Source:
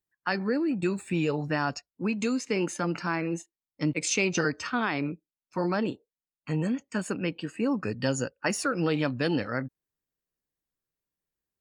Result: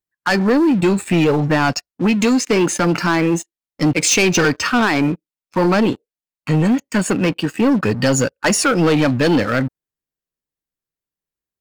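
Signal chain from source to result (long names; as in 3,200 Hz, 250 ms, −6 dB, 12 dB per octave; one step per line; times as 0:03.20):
0:01.24–0:01.65: high-shelf EQ 4,700 Hz −11.5 dB
leveller curve on the samples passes 3
level +4.5 dB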